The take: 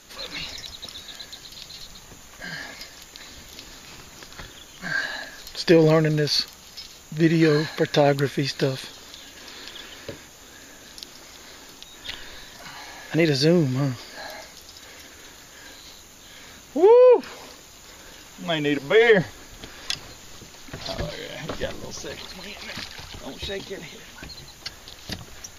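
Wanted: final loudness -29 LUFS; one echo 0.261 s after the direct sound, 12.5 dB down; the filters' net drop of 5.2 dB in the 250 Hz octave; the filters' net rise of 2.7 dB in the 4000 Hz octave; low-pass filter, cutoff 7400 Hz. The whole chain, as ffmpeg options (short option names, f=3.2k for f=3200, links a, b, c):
-af "lowpass=7.4k,equalizer=f=250:t=o:g=-9,equalizer=f=4k:t=o:g=3.5,aecho=1:1:261:0.237,volume=-4dB"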